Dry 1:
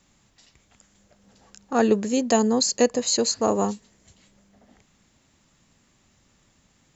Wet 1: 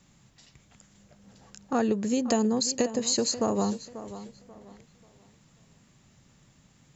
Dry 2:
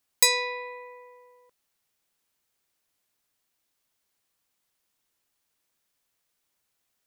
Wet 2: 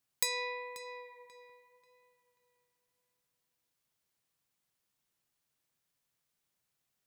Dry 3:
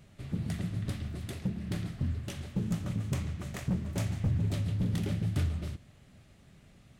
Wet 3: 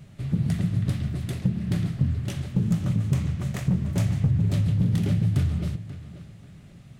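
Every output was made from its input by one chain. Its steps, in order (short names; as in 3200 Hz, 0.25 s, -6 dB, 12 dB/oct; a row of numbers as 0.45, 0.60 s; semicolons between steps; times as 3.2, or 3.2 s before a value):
bell 140 Hz +9 dB 0.93 oct; compressor 6:1, threshold -22 dBFS; tape echo 0.537 s, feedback 32%, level -13 dB, low-pass 4000 Hz; normalise peaks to -12 dBFS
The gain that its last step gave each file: -0.5, -6.0, +4.5 dB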